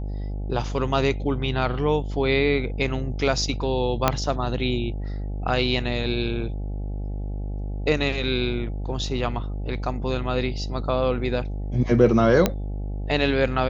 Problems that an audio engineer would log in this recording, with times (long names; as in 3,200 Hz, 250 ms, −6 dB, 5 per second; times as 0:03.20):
mains buzz 50 Hz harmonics 17 −29 dBFS
0:04.08: click −3 dBFS
0:12.46: click −5 dBFS